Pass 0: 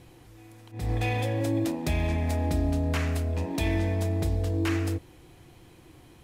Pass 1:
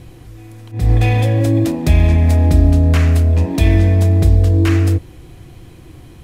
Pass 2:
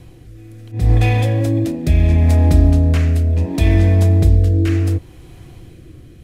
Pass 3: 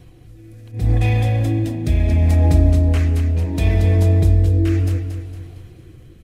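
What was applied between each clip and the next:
low-shelf EQ 180 Hz +10 dB; notch filter 880 Hz, Q 12; level +8.5 dB
rotating-speaker cabinet horn 0.7 Hz
spectral magnitudes quantised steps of 15 dB; repeating echo 229 ms, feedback 43%, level −8 dB; level −3.5 dB

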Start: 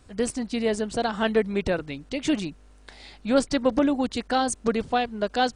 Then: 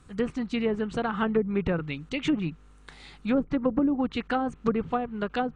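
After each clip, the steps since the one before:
dynamic equaliser 2,600 Hz, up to +6 dB, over −45 dBFS, Q 1.6
treble cut that deepens with the level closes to 530 Hz, closed at −17 dBFS
thirty-one-band graphic EQ 160 Hz +10 dB, 630 Hz −9 dB, 1,250 Hz +7 dB, 5,000 Hz −7 dB
level −1.5 dB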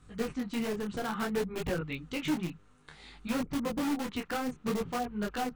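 in parallel at −6 dB: wrap-around overflow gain 21.5 dB
on the sum: micro pitch shift up and down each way 20 cents
level −3.5 dB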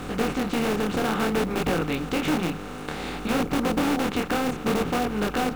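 compressor on every frequency bin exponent 0.4
in parallel at −8.5 dB: log-companded quantiser 4 bits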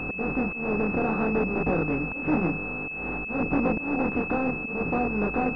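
speech leveller within 4 dB 2 s
volume swells 213 ms
switching amplifier with a slow clock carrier 2,600 Hz

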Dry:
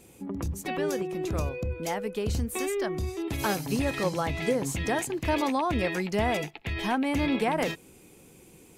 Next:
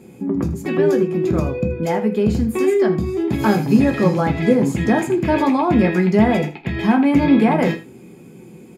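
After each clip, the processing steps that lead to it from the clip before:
low-shelf EQ 490 Hz +8.5 dB
single-tap delay 80 ms −15.5 dB
convolution reverb RT60 0.25 s, pre-delay 3 ms, DRR 2.5 dB
level −3 dB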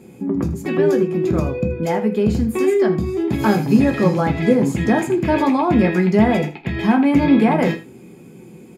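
no processing that can be heard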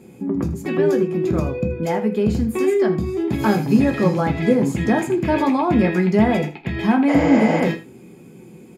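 healed spectral selection 0:07.11–0:07.57, 460–7,400 Hz after
level −1.5 dB

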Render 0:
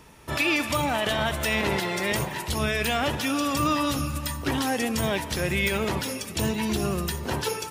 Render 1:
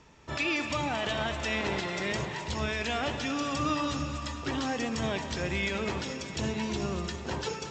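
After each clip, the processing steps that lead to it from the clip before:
Butterworth low-pass 7,700 Hz 96 dB per octave
delay that swaps between a low-pass and a high-pass 112 ms, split 1,300 Hz, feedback 86%, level −11 dB
level −6 dB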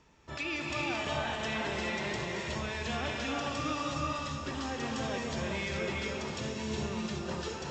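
reverb whose tail is shaped and stops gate 450 ms rising, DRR −1.5 dB
level −6.5 dB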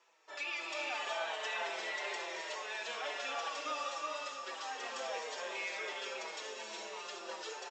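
high-pass filter 480 Hz 24 dB per octave
barber-pole flanger 5.4 ms −1.8 Hz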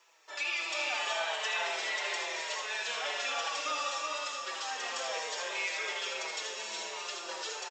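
spectral tilt +2 dB per octave
single-tap delay 79 ms −8 dB
level +3 dB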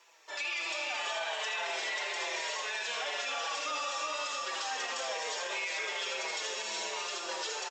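notch filter 1,300 Hz, Q 30
brickwall limiter −29.5 dBFS, peak gain reduction 9 dB
level +3.5 dB
Ogg Vorbis 96 kbit/s 48,000 Hz

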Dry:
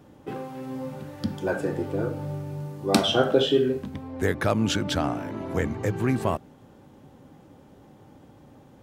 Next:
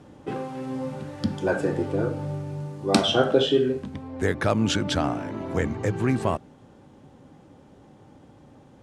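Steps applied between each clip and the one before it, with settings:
in parallel at +1.5 dB: speech leveller within 4 dB 2 s
on the sum: low-pass filter 10,000 Hz 24 dB per octave
level −6 dB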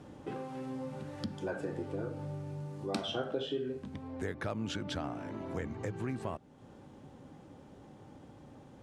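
dynamic equaliser 8,000 Hz, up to −4 dB, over −44 dBFS, Q 0.8
downward compressor 2 to 1, threshold −40 dBFS, peak gain reduction 14.5 dB
level −2.5 dB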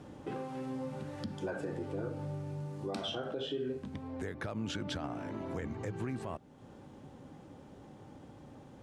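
brickwall limiter −29 dBFS, peak gain reduction 7 dB
level +1 dB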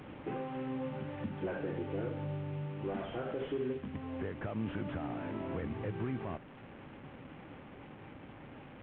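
linear delta modulator 16 kbit/s, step −47.5 dBFS
level +1 dB

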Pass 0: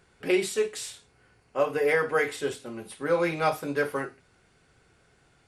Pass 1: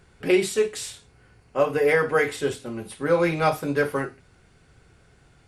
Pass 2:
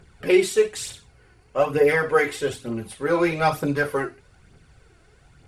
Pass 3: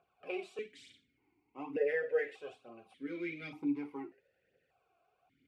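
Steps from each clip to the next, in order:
low-shelf EQ 170 Hz +9 dB; level +3 dB
phase shifter 1.1 Hz, delay 3.1 ms, feedback 48%
formant filter that steps through the vowels 1.7 Hz; level −5 dB

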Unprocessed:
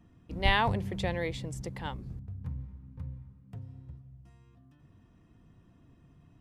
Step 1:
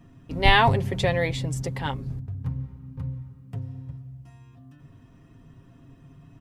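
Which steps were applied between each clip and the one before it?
comb filter 7.4 ms, depth 57%
level +7.5 dB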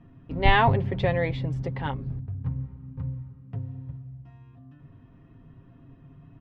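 high-frequency loss of the air 330 metres

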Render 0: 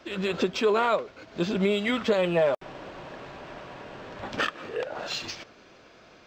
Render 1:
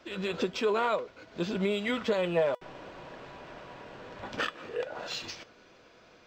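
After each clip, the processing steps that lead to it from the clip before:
tuned comb filter 490 Hz, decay 0.17 s, harmonics all, mix 60%
level +2.5 dB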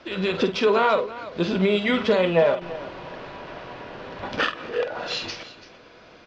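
low-pass filter 5,600 Hz 24 dB per octave
on a send: multi-tap delay 48/335 ms −9.5/−16 dB
on the sum: level +8 dB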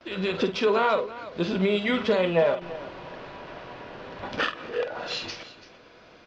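noise gate with hold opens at −45 dBFS
level −3 dB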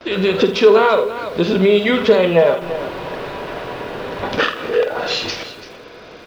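in parallel at +2.5 dB: downward compressor, threshold −32 dBFS, peak gain reduction 14.5 dB
on the sum: hollow resonant body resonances 430/3,700 Hz, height 6 dB, ringing for 30 ms
feedback echo at a low word length 82 ms, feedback 35%, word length 7 bits, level −14 dB
level +5 dB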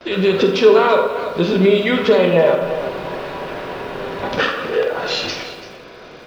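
convolution reverb RT60 1.4 s, pre-delay 3 ms, DRR 4 dB
level −1.5 dB

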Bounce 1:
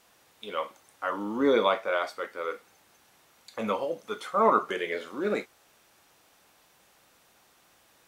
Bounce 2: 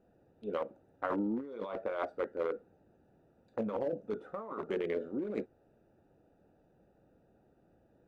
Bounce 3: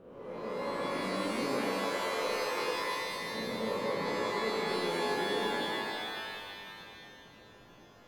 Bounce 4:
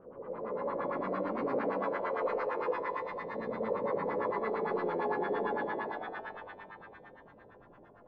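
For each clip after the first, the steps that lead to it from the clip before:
adaptive Wiener filter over 41 samples; tilt shelving filter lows +6.5 dB, about 1,400 Hz; compressor whose output falls as the input rises −30 dBFS, ratio −1; level −6 dB
spectrum smeared in time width 626 ms; brickwall limiter −38 dBFS, peak gain reduction 8.5 dB; reverb with rising layers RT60 2.2 s, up +12 semitones, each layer −2 dB, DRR −2.5 dB; level +5.5 dB
auto-filter low-pass sine 8.8 Hz 500–1,600 Hz; level −3 dB

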